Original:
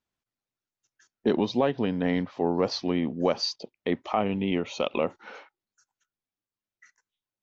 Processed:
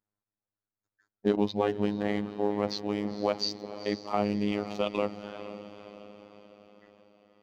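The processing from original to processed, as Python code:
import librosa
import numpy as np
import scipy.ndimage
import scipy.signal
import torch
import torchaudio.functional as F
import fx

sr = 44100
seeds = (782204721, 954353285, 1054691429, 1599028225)

y = fx.wiener(x, sr, points=15)
y = fx.echo_diffused(y, sr, ms=476, feedback_pct=53, wet_db=-12.0)
y = fx.robotise(y, sr, hz=103.0)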